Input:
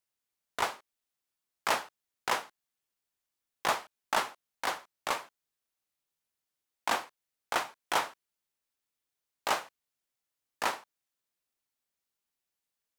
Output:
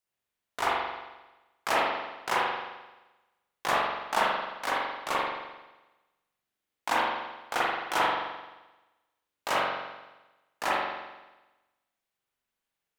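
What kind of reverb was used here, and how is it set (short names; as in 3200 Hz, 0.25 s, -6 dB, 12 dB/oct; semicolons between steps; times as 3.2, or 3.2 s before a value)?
spring tank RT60 1.1 s, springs 43 ms, chirp 40 ms, DRR -6.5 dB; gain -2 dB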